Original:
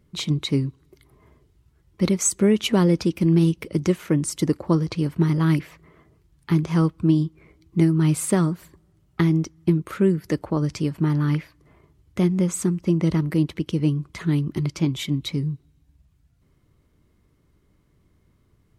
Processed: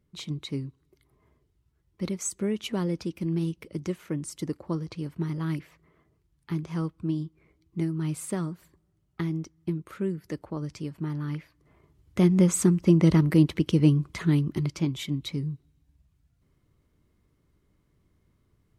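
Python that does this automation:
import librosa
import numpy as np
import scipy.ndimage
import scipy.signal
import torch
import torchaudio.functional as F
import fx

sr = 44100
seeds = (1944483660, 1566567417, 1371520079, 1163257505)

y = fx.gain(x, sr, db=fx.line((11.36, -10.5), (12.4, 1.5), (13.97, 1.5), (14.93, -5.5)))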